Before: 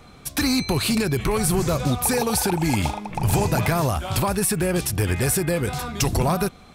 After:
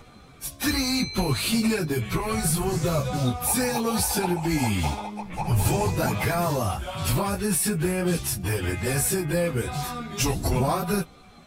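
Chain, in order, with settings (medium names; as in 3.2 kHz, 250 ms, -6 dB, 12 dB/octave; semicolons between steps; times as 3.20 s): plain phase-vocoder stretch 1.7×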